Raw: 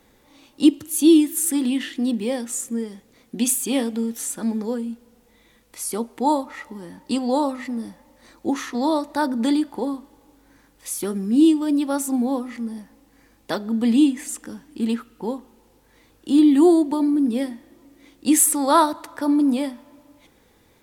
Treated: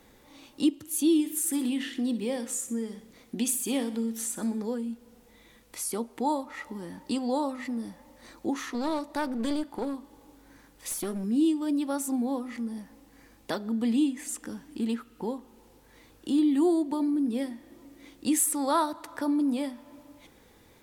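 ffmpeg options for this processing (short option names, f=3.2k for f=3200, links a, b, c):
-filter_complex "[0:a]asettb=1/sr,asplit=3[a][b][c];[a]atrim=end=1.134[d];[b]atrim=start=1.13:end=4.62,asetpts=PTS-STARTPTS,afade=t=in:d=0.004:c=qsin,afade=t=out:st=3.486:d=0.004:c=qsin,aecho=1:1:62|124|186|248|310:0.2|0.0958|0.046|0.0221|0.0106,atrim=end_sample=153909[e];[c]atrim=start=4.616[f];[d][e]acrossfade=d=0.004:c1=hsin:c2=qsin[g];[g][f]acrossfade=d=0.004:c1=qsin:c2=hsin,asettb=1/sr,asplit=3[h][i][j];[h]atrim=end=8.594[k];[i]atrim=start=8.59:end=11.24,asetpts=PTS-STARTPTS,afade=t=in:d=0.004:c=qsin,afade=t=out:st=2.646:d=0.004:c=qsin,aeval=exprs='clip(val(0),-1,0.0447)':c=same[l];[j]atrim=start=11.236[m];[k][l]acrossfade=d=0.004:c1=hsin:c2=qsin[n];[n][m]acrossfade=d=0.004:c1=qsin:c2=hsin,acompressor=threshold=-38dB:ratio=1.5"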